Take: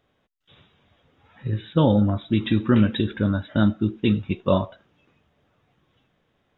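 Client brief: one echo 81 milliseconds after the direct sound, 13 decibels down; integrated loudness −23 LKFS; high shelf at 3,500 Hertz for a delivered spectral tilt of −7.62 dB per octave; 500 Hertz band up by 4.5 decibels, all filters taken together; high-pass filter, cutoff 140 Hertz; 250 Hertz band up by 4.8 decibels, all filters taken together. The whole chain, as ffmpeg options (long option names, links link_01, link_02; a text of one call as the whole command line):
ffmpeg -i in.wav -af "highpass=140,equalizer=frequency=250:width_type=o:gain=6,equalizer=frequency=500:width_type=o:gain=4,highshelf=frequency=3500:gain=-5.5,aecho=1:1:81:0.224,volume=-5dB" out.wav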